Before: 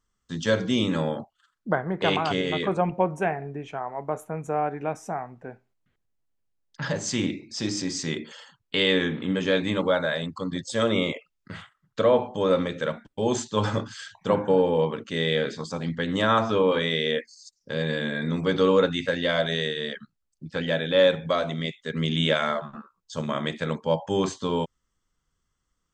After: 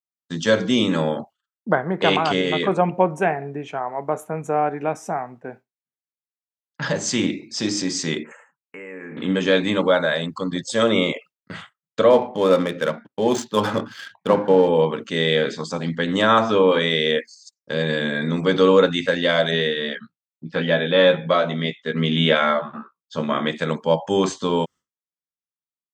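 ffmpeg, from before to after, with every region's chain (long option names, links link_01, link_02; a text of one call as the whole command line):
ffmpeg -i in.wav -filter_complex "[0:a]asettb=1/sr,asplit=3[link_01][link_02][link_03];[link_01]atrim=end=8.234[link_04];[link_02]atrim=start=8.23:end=9.17,asetpts=PTS-STARTPTS,afade=type=in:duration=0.004:curve=qsin,afade=type=out:start_time=0.936:duration=0.004:curve=qsin,bass=frequency=250:gain=-5,treble=frequency=4000:gain=-4,acompressor=threshold=-36dB:ratio=10:attack=3.2:release=140:knee=1:detection=peak,asuperstop=centerf=4200:order=12:qfactor=1[link_05];[link_03]atrim=start=9.166[link_06];[link_04][link_05]acrossfade=duration=0.004:curve1=hsin:curve2=qsin[link_07];[link_07][link_06]acrossfade=duration=0.004:curve1=qsin:curve2=hsin,asettb=1/sr,asplit=3[link_08][link_09][link_10];[link_08]atrim=end=12.104[link_11];[link_09]atrim=start=12.1:end=14.68,asetpts=PTS-STARTPTS,afade=type=in:duration=0.004:curve=qsin,afade=type=out:start_time=2.576:duration=0.004:curve=qsin,highpass=110,adynamicsmooth=sensitivity=8:basefreq=2200[link_12];[link_10]atrim=start=14.676[link_13];[link_11][link_12]acrossfade=duration=0.004:curve1=hsin:curve2=qsin[link_14];[link_14][link_13]acrossfade=duration=0.004:curve1=qsin:curve2=hsin,asettb=1/sr,asplit=3[link_15][link_16][link_17];[link_15]atrim=end=19.514[link_18];[link_16]atrim=start=19.51:end=23.51,asetpts=PTS-STARTPTS,afade=type=in:duration=0.004:curve=qsin,afade=type=out:start_time=3.996:duration=0.004:curve=qsin,lowpass=3900,asplit=2[link_19][link_20];[link_20]adelay=17,volume=-6dB[link_21];[link_19][link_21]amix=inputs=2:normalize=0,atrim=end_sample=176400[link_22];[link_17]atrim=start=23.506[link_23];[link_18][link_22]acrossfade=duration=0.004:curve1=hsin:curve2=qsin[link_24];[link_24][link_23]acrossfade=duration=0.004:curve1=qsin:curve2=hsin,agate=range=-33dB:threshold=-43dB:ratio=3:detection=peak,highpass=150,volume=5.5dB" out.wav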